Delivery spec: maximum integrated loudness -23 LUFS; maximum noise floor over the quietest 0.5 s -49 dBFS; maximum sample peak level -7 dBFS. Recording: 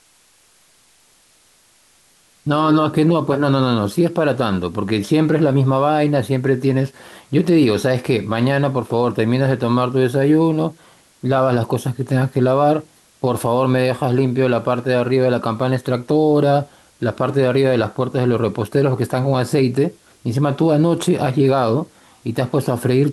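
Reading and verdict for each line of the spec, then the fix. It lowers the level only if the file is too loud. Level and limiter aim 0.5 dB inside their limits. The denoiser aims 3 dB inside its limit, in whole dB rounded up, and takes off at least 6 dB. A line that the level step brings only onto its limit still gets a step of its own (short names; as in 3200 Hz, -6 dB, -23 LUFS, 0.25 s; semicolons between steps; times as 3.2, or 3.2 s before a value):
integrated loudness -17.5 LUFS: fail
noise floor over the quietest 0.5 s -55 dBFS: OK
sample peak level -5.5 dBFS: fail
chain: gain -6 dB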